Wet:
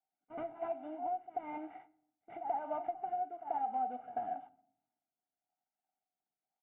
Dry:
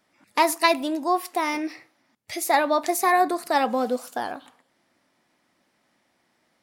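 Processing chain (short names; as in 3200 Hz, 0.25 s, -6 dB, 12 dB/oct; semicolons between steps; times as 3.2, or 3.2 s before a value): CVSD 16 kbps; double band-pass 530 Hz, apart 1 oct; reverse echo 90 ms -14.5 dB; rotary speaker horn 1 Hz; gate -57 dBFS, range -21 dB; compressor 10:1, threshold -41 dBFS, peak gain reduction 18 dB; comb 1.4 ms, depth 88%; reverb RT60 0.70 s, pre-delay 7 ms, DRR 15 dB; gain +4 dB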